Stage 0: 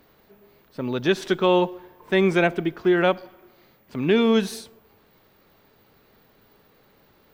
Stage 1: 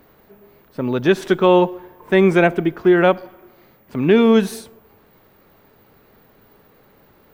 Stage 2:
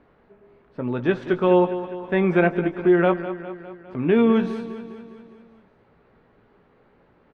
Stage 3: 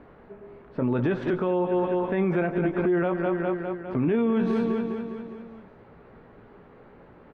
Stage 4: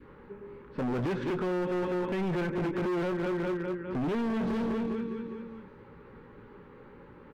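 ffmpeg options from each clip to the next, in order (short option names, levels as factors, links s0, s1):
-af "equalizer=f=4400:w=0.8:g=-7,volume=2"
-filter_complex "[0:a]lowpass=2500,asplit=2[s0][s1];[s1]adelay=17,volume=0.376[s2];[s0][s2]amix=inputs=2:normalize=0,asplit=2[s3][s4];[s4]aecho=0:1:203|406|609|812|1015|1218:0.237|0.138|0.0798|0.0463|0.0268|0.0156[s5];[s3][s5]amix=inputs=2:normalize=0,volume=0.531"
-af "highshelf=f=3400:g=-10.5,acompressor=threshold=0.0562:ratio=4,alimiter=level_in=1.06:limit=0.0631:level=0:latency=1:release=24,volume=0.944,volume=2.51"
-af "adynamicequalizer=threshold=0.00891:dfrequency=780:dqfactor=0.92:tfrequency=780:tqfactor=0.92:attack=5:release=100:ratio=0.375:range=2:mode=cutabove:tftype=bell,asuperstop=centerf=680:order=4:qfactor=3,asoftclip=type=hard:threshold=0.0398"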